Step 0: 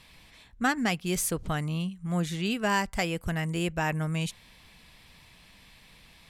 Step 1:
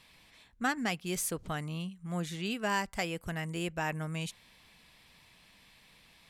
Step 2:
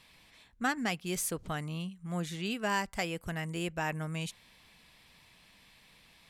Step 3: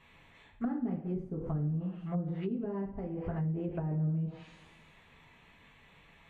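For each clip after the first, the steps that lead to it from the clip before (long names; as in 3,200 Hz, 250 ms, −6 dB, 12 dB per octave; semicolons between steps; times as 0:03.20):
low-shelf EQ 120 Hz −8 dB; level −4.5 dB
no processing that can be heard
adaptive Wiener filter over 9 samples; coupled-rooms reverb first 0.45 s, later 1.6 s, DRR −3 dB; treble cut that deepens with the level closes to 320 Hz, closed at −28 dBFS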